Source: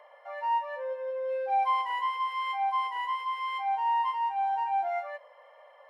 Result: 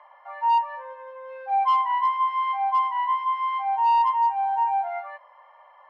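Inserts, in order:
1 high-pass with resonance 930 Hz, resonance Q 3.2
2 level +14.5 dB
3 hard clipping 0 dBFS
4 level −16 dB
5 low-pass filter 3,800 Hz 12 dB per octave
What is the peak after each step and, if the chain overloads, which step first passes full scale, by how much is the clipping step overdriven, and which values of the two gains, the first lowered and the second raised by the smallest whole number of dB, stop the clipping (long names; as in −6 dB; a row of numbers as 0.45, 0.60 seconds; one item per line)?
−10.5, +4.0, 0.0, −16.0, −15.5 dBFS
step 2, 4.0 dB
step 2 +10.5 dB, step 4 −12 dB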